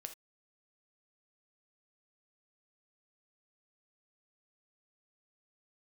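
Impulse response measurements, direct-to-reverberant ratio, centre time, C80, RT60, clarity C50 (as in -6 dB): 6.5 dB, 8 ms, 20.0 dB, no single decay rate, 11.5 dB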